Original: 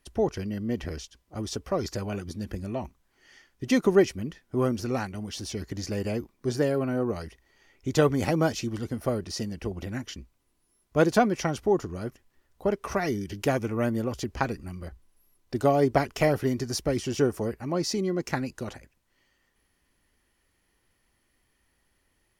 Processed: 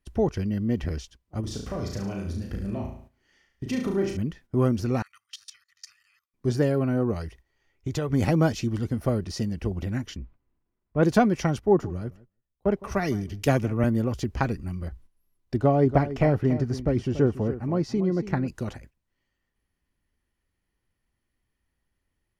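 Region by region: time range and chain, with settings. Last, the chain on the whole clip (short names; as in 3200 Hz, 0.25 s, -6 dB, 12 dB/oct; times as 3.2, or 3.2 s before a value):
1.4–4.17 compressor 2:1, threshold -36 dBFS + flutter echo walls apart 6.1 m, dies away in 0.58 s
5.02–6.34 elliptic high-pass 1200 Hz, stop band 50 dB + comb 1.6 ms, depth 47% + level quantiser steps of 18 dB
7.14–8.13 bell 220 Hz -12.5 dB 0.31 oct + compressor 3:1, threshold -29 dBFS
10.17–11.03 LPF 2000 Hz + transient shaper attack -4 dB, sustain +5 dB
11.59–13.84 darkening echo 0.162 s, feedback 21%, low-pass 3200 Hz, level -17.5 dB + three-band expander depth 70%
15.56–18.48 LPF 1600 Hz 6 dB/oct + echo 0.284 s -13 dB
whole clip: tone controls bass +7 dB, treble -3 dB; gate -48 dBFS, range -11 dB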